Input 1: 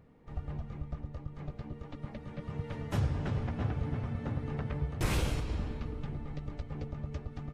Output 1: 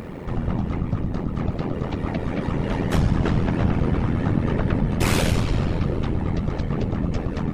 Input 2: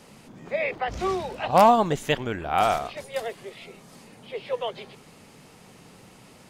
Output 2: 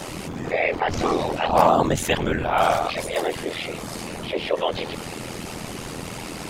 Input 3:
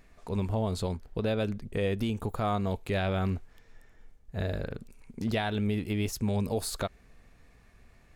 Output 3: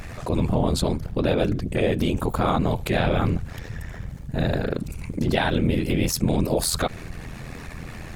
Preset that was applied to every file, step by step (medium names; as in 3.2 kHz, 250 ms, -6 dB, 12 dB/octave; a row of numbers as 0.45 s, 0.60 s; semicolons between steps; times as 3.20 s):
whisper effect; AM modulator 83 Hz, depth 45%; level flattener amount 50%; normalise loudness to -24 LUFS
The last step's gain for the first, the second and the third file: +12.5 dB, +0.5 dB, +8.0 dB